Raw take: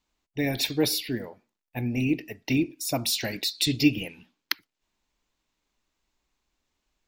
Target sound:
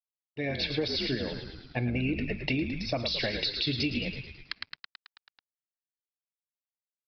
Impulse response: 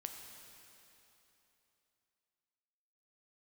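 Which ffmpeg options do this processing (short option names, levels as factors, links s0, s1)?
-filter_complex "[0:a]highpass=110,bandreject=f=1000:w=11,aecho=1:1:1.8:0.35,asplit=2[s0][s1];[s1]asplit=8[s2][s3][s4][s5][s6][s7][s8][s9];[s2]adelay=109,afreqshift=-55,volume=0.335[s10];[s3]adelay=218,afreqshift=-110,volume=0.211[s11];[s4]adelay=327,afreqshift=-165,volume=0.133[s12];[s5]adelay=436,afreqshift=-220,volume=0.0841[s13];[s6]adelay=545,afreqshift=-275,volume=0.0525[s14];[s7]adelay=654,afreqshift=-330,volume=0.0331[s15];[s8]adelay=763,afreqshift=-385,volume=0.0209[s16];[s9]adelay=872,afreqshift=-440,volume=0.0132[s17];[s10][s11][s12][s13][s14][s15][s16][s17]amix=inputs=8:normalize=0[s18];[s0][s18]amix=inputs=2:normalize=0,dynaudnorm=f=180:g=7:m=5.01,alimiter=limit=0.398:level=0:latency=1:release=72,aresample=11025,aeval=exprs='sgn(val(0))*max(abs(val(0))-0.00355,0)':c=same,aresample=44100,acompressor=threshold=0.126:ratio=6,volume=0.422"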